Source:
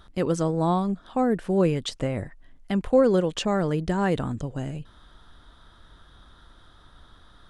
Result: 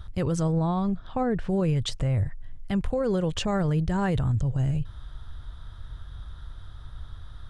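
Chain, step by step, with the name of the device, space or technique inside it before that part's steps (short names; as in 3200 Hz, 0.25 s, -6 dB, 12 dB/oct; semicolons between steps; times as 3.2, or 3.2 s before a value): 0.52–1.49 LPF 5100 Hz 12 dB/oct; car stereo with a boomy subwoofer (resonant low shelf 160 Hz +13 dB, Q 1.5; limiter -18.5 dBFS, peak gain reduction 9.5 dB)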